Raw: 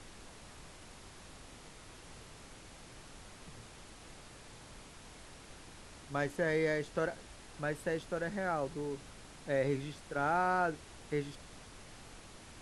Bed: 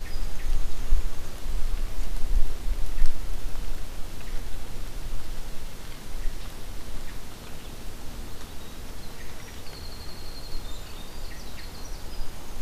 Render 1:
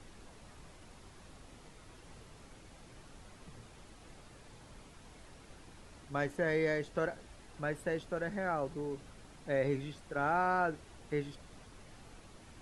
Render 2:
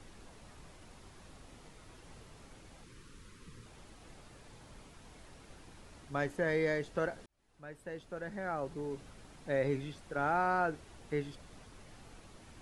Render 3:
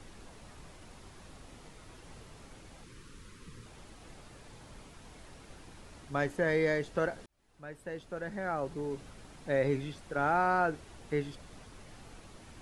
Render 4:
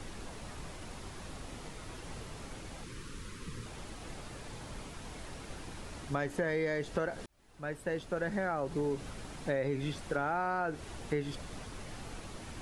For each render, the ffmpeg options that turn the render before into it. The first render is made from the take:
-af "afftdn=nr=6:nf=-54"
-filter_complex "[0:a]asettb=1/sr,asplit=3[s0][s1][s2];[s0]atrim=end=2.844[s3];[s1]atrim=start=2.84:end=3.66,asetpts=PTS-STARTPTS,afade=t=in:d=0.004:c=qsin,afade=t=out:st=0.816:d=0.004:c=qsin,asuperstop=centerf=710:order=4:qfactor=1.4[s4];[s2]atrim=start=3.656[s5];[s3][s4]acrossfade=d=0.004:c1=hsin:c2=qsin[s6];[s6][s5]acrossfade=d=0.004:c1=qsin:c2=hsin,asplit=2[s7][s8];[s7]atrim=end=7.26,asetpts=PTS-STARTPTS,afade=t=out:st=7.256:d=0.004:c=hsin[s9];[s8]atrim=start=7.26,asetpts=PTS-STARTPTS,afade=t=in:d=1.71[s10];[s9][s10]concat=n=2:v=0:a=1"
-af "volume=1.41"
-filter_complex "[0:a]asplit=2[s0][s1];[s1]alimiter=level_in=1.68:limit=0.0631:level=0:latency=1:release=146,volume=0.596,volume=1.19[s2];[s0][s2]amix=inputs=2:normalize=0,acompressor=threshold=0.0355:ratio=6"

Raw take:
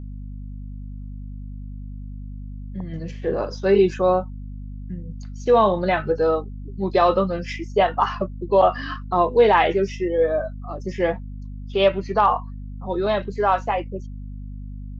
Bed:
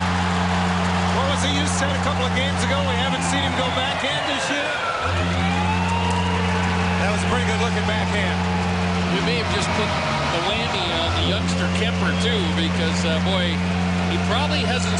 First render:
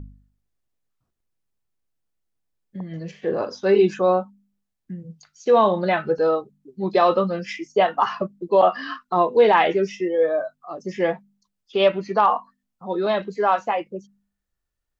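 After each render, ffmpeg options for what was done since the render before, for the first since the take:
-af "bandreject=f=50:t=h:w=4,bandreject=f=100:t=h:w=4,bandreject=f=150:t=h:w=4,bandreject=f=200:t=h:w=4,bandreject=f=250:t=h:w=4"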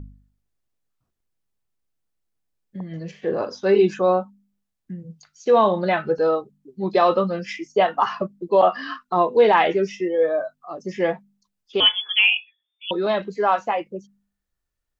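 -filter_complex "[0:a]asettb=1/sr,asplit=3[s0][s1][s2];[s0]atrim=end=11.804[s3];[s1]atrim=start=11.8:end=12.91,asetpts=PTS-STARTPTS,afade=t=in:d=0.004:c=qsin,afade=t=out:st=1.106:d=0.004:c=qsin,lowpass=f=3100:t=q:w=0.5098,lowpass=f=3100:t=q:w=0.6013,lowpass=f=3100:t=q:w=0.9,lowpass=f=3100:t=q:w=2.563,afreqshift=-3600[s4];[s2]atrim=start=12.906[s5];[s3][s4]acrossfade=d=0.004:c1=hsin:c2=qsin[s6];[s6][s5]acrossfade=d=0.004:c1=qsin:c2=hsin"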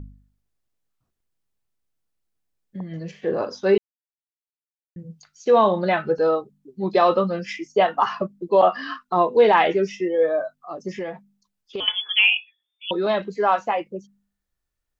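-filter_complex "[0:a]asettb=1/sr,asplit=3[s0][s1][s2];[s0]atrim=end=10.884[s3];[s1]atrim=start=10.88:end=11.88,asetpts=PTS-STARTPTS,afade=t=in:d=0.004:c=qsin,afade=t=out:st=0.996:d=0.004:c=qsin,acompressor=threshold=0.0562:ratio=10:attack=3.2:release=140:knee=1:detection=peak[s4];[s2]atrim=start=11.876[s5];[s3][s4]acrossfade=d=0.004:c1=hsin:c2=qsin[s6];[s6][s5]acrossfade=d=0.004:c1=qsin:c2=hsin,asplit=3[s7][s8][s9];[s7]atrim=end=3.78,asetpts=PTS-STARTPTS,afade=t=out:st=3.776:d=0.004:c=hsin[s10];[s8]atrim=start=3.78:end=4.96,asetpts=PTS-STARTPTS,volume=0[s11];[s9]atrim=start=4.96,asetpts=PTS-STARTPTS,afade=t=in:d=0.004:c=hsin[s12];[s10][s11][s12]concat=n=3:v=0:a=1"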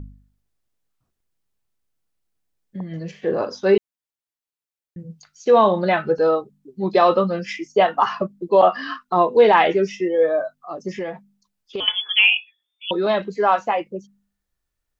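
-af "volume=1.26"

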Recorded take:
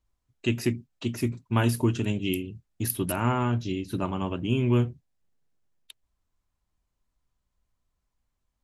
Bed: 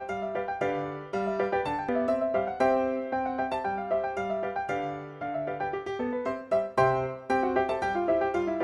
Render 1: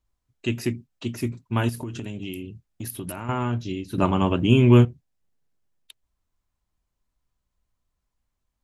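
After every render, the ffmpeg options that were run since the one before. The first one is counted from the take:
-filter_complex "[0:a]asettb=1/sr,asplit=3[s0][s1][s2];[s0]atrim=end=1.694[s3];[s1]atrim=start=1.69:end=3.29,asetpts=PTS-STARTPTS,afade=t=in:d=0.004:c=qsin,afade=t=out:st=1.596:d=0.004:c=qsin,acompressor=threshold=0.0398:ratio=10:attack=3.2:release=140:knee=1:detection=peak[s4];[s2]atrim=start=3.286[s5];[s3][s4]acrossfade=d=0.004:c1=hsin:c2=qsin[s6];[s6][s5]acrossfade=d=0.004:c1=qsin:c2=hsin,asplit=3[s7][s8][s9];[s7]atrim=end=3.982[s10];[s8]atrim=start=3.978:end=4.852,asetpts=PTS-STARTPTS,volume=2.66[s11];[s9]atrim=start=4.848[s12];[s10][s11]acrossfade=d=0.004:c1=hsin:c2=hsin[s13];[s13][s12]acrossfade=d=0.004:c1=hsin:c2=hsin"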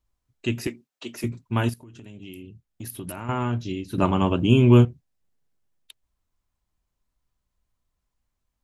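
-filter_complex "[0:a]asettb=1/sr,asplit=3[s0][s1][s2];[s0]atrim=end=0.674[s3];[s1]atrim=start=0.67:end=1.24,asetpts=PTS-STARTPTS,afade=t=in:d=0.004:c=qsin,afade=t=out:st=0.566:d=0.004:c=qsin,highpass=380[s4];[s2]atrim=start=1.236[s5];[s3][s4]acrossfade=d=0.004:c1=hsin:c2=qsin[s6];[s6][s5]acrossfade=d=0.004:c1=qsin:c2=hsin,asettb=1/sr,asplit=3[s7][s8][s9];[s7]atrim=end=4.304[s10];[s8]atrim=start=4.3:end=4.85,asetpts=PTS-STARTPTS,afade=t=in:d=0.004:c=qsin,afade=t=out:st=0.546:d=0.004:c=qsin,equalizer=f=1900:w=4.1:g=-10[s11];[s9]atrim=start=4.846[s12];[s10][s11]acrossfade=d=0.004:c1=hsin:c2=qsin[s13];[s13][s12]acrossfade=d=0.004:c1=qsin:c2=hsin,asplit=2[s14][s15];[s14]atrim=end=1.74,asetpts=PTS-STARTPTS,afade=t=out:st=1.736:d=0.004:c=hsin:silence=0.149624[s16];[s15]atrim=start=1.74,asetpts=PTS-STARTPTS,afade=t=in:d=1.64:silence=0.149624[s17];[s16][s17]concat=n=2:v=0:a=1"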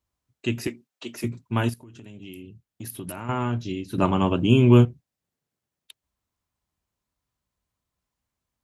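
-af "highpass=77"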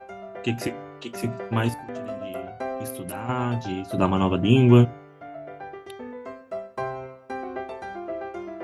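-filter_complex "[1:a]volume=0.447[s0];[0:a][s0]amix=inputs=2:normalize=0"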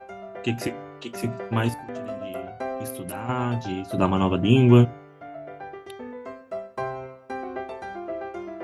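-af anull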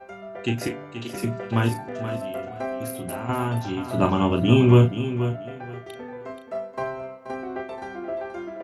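-filter_complex "[0:a]asplit=2[s0][s1];[s1]adelay=35,volume=0.447[s2];[s0][s2]amix=inputs=2:normalize=0,aecho=1:1:479|958|1437:0.299|0.0597|0.0119"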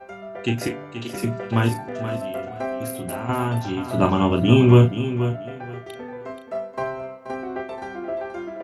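-af "volume=1.26"

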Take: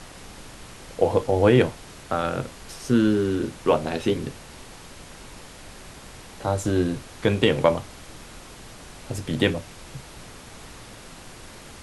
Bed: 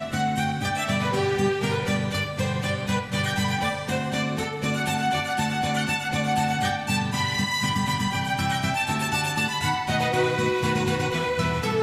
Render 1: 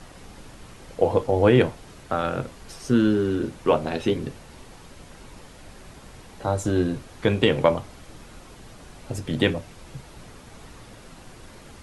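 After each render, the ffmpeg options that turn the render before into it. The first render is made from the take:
-af "afftdn=nr=6:nf=-44"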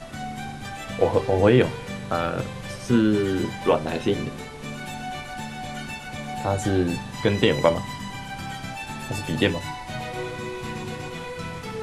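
-filter_complex "[1:a]volume=0.355[s0];[0:a][s0]amix=inputs=2:normalize=0"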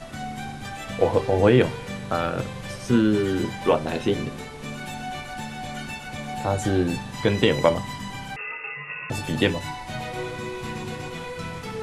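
-filter_complex "[0:a]asettb=1/sr,asplit=3[s0][s1][s2];[s0]atrim=end=8.364[s3];[s1]atrim=start=8.36:end=9.1,asetpts=PTS-STARTPTS,afade=t=in:d=0.004:c=qsin,afade=t=out:st=0.736:d=0.004:c=qsin,lowpass=f=2400:t=q:w=0.5098,lowpass=f=2400:t=q:w=0.6013,lowpass=f=2400:t=q:w=0.9,lowpass=f=2400:t=q:w=2.563,afreqshift=-2800[s4];[s2]atrim=start=9.096[s5];[s3][s4]acrossfade=d=0.004:c1=hsin:c2=qsin[s6];[s6][s5]acrossfade=d=0.004:c1=qsin:c2=hsin"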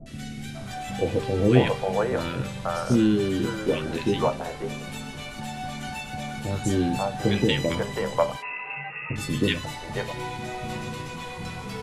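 -filter_complex "[0:a]asplit=2[s0][s1];[s1]adelay=15,volume=0.237[s2];[s0][s2]amix=inputs=2:normalize=0,acrossover=split=490|1600[s3][s4][s5];[s5]adelay=60[s6];[s4]adelay=540[s7];[s3][s7][s6]amix=inputs=3:normalize=0"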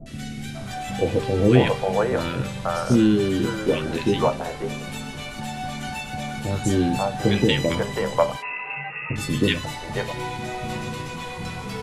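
-af "volume=1.41,alimiter=limit=0.708:level=0:latency=1"

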